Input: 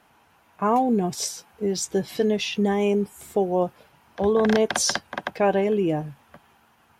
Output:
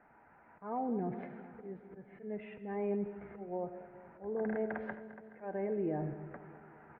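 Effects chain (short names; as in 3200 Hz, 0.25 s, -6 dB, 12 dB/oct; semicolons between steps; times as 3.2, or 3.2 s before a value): recorder AGC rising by 6.2 dB/s; steep low-pass 2100 Hz 48 dB/oct; bell 94 Hz -7 dB 0.85 oct; notch 1100 Hz, Q 7.2; auto swell 0.644 s; limiter -25 dBFS, peak gain reduction 12 dB; on a send: feedback echo 0.212 s, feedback 60%, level -15 dB; on the sum: digital reverb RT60 0.68 s, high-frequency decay 0.25×, pre-delay 35 ms, DRR 12 dB; gain -3.5 dB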